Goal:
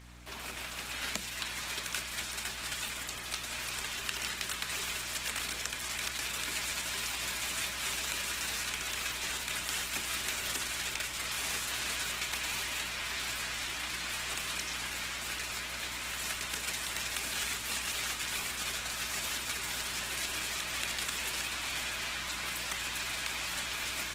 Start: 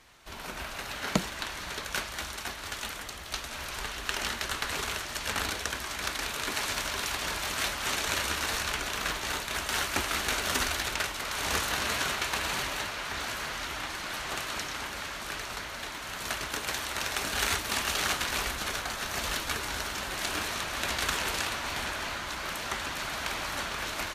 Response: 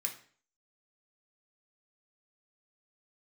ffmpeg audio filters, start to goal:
-filter_complex "[0:a]highpass=f=120:p=1,asplit=2[a][b];[1:a]atrim=start_sample=2205[c];[b][c]afir=irnorm=-1:irlink=0,volume=-5dB[d];[a][d]amix=inputs=2:normalize=0,acrossover=split=180|2100[e][f][g];[e]acompressor=threshold=-58dB:ratio=4[h];[f]acompressor=threshold=-44dB:ratio=4[i];[g]acompressor=threshold=-34dB:ratio=4[j];[h][i][j]amix=inputs=3:normalize=0,aeval=exprs='val(0)+0.00282*(sin(2*PI*60*n/s)+sin(2*PI*2*60*n/s)/2+sin(2*PI*3*60*n/s)/3+sin(2*PI*4*60*n/s)/4+sin(2*PI*5*60*n/s)/5)':c=same" -ar 48000 -c:a libopus -b:a 16k

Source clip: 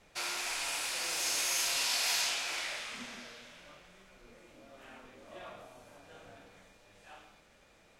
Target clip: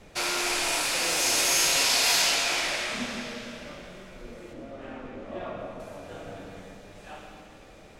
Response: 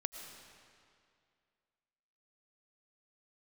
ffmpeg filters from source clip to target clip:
-filter_complex "[0:a]asettb=1/sr,asplit=3[a][b][c];[a]atrim=end=4.534[d];[b]atrim=start=4.53:end=5.8,asetpts=PTS-STARTPTS,afade=t=in:d=0.004:c=qsin,afade=t=out:st=1.266:d=0.004:c=qsin,aemphasis=mode=reproduction:type=75fm[e];[c]atrim=start=5.796[f];[d][e]acrossfade=d=0.004:c1=hsin:c2=qsin[g];[g][f]acrossfade=d=0.004:c1=qsin:c2=hsin,acrossover=split=580[h][i];[h]acontrast=87[j];[j][i]amix=inputs=2:normalize=0[k];[1:a]atrim=start_sample=2205[l];[k][l]afir=irnorm=-1:irlink=0,volume=9dB"

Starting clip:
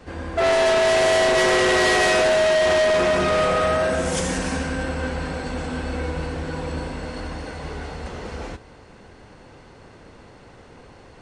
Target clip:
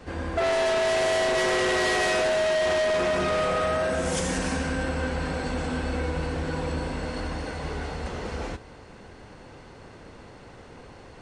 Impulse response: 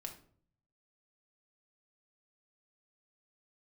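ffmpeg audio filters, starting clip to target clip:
-af "acompressor=threshold=-23dB:ratio=6"

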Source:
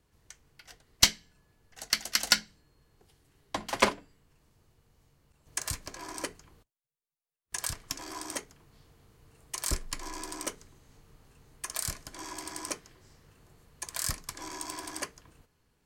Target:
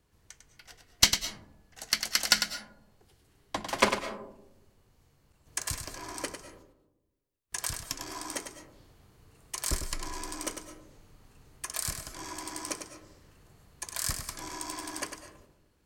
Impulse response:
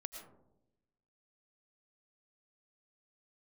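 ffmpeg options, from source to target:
-filter_complex "[0:a]asplit=2[a][b];[1:a]atrim=start_sample=2205,adelay=100[c];[b][c]afir=irnorm=-1:irlink=0,volume=-3.5dB[d];[a][d]amix=inputs=2:normalize=0"

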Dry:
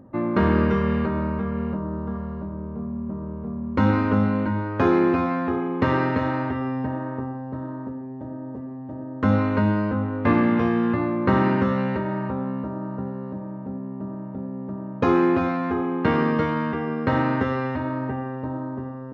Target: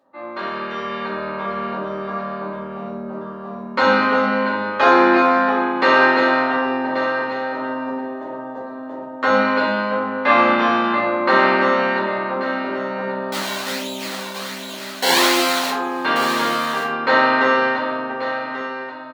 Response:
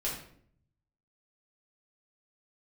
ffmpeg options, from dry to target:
-filter_complex "[0:a]asettb=1/sr,asplit=3[a][b][c];[a]atrim=end=13.324[d];[b]atrim=start=13.32:end=15.7,asetpts=PTS-STARTPTS,afade=t=in:d=0.004:c=qsin,afade=t=out:st=2.376:d=0.004:c=qsin,acrusher=samples=24:mix=1:aa=0.000001:lfo=1:lforange=24:lforate=1.3[e];[c]atrim=start=15.696[f];[d][e]acrossfade=d=0.004:c1=hsin:c2=qsin[g];[g][f]acrossfade=d=0.004:c1=qsin:c2=hsin,highpass=810,equalizer=f=4.1k:t=o:w=0.42:g=6.5[h];[1:a]atrim=start_sample=2205,asetrate=57330,aresample=44100[i];[h][i]afir=irnorm=-1:irlink=0,dynaudnorm=f=220:g=11:m=16.5dB,aecho=1:1:1134:0.282,volume=-1dB"

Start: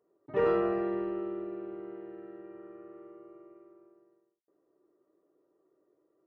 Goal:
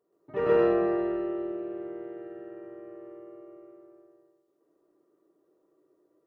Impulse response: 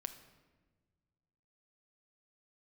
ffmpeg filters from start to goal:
-filter_complex "[0:a]asplit=2[a][b];[1:a]atrim=start_sample=2205,adelay=126[c];[b][c]afir=irnorm=-1:irlink=0,volume=6dB[d];[a][d]amix=inputs=2:normalize=0,volume=-2dB"

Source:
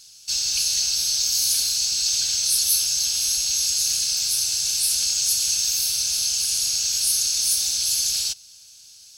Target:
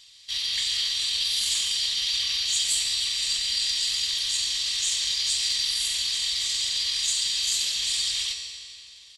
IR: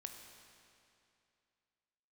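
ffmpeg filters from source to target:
-filter_complex "[0:a]acontrast=55,asetrate=32097,aresample=44100,atempo=1.37395[a];[1:a]atrim=start_sample=2205,asetrate=48510,aresample=44100[b];[a][b]afir=irnorm=-1:irlink=0,volume=-4dB"

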